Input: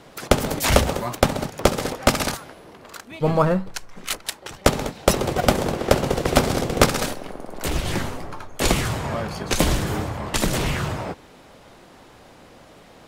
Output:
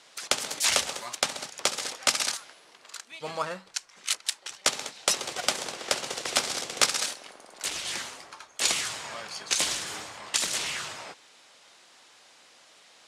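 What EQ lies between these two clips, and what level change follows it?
frequency weighting ITU-R 468; -10.0 dB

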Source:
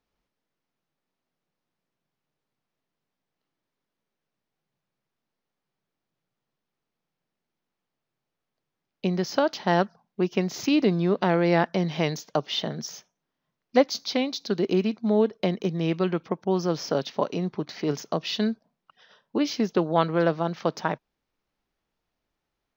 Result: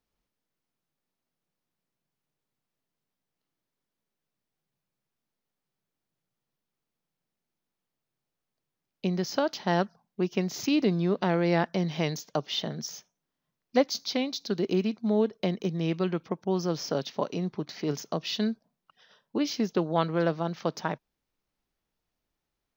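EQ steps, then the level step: bass shelf 260 Hz +4 dB; treble shelf 4.7 kHz +7 dB; -5.0 dB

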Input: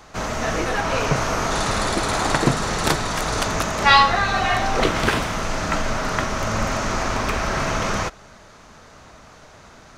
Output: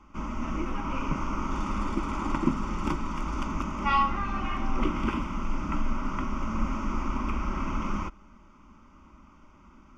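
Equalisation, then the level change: distance through air 230 m; static phaser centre 460 Hz, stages 6; static phaser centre 1.7 kHz, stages 4; 0.0 dB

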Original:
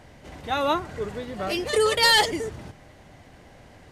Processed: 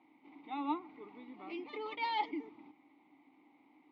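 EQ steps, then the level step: vowel filter u; cabinet simulation 220–4800 Hz, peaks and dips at 270 Hz +5 dB, 590 Hz +9 dB, 1.2 kHz +10 dB, 2.1 kHz +5 dB, 3.7 kHz +7 dB; -5.5 dB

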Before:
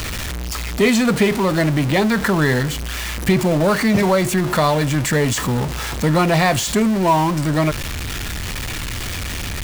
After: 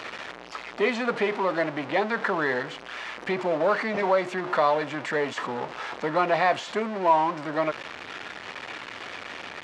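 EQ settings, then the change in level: high-pass 550 Hz 12 dB/octave; tape spacing loss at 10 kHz 33 dB; 0.0 dB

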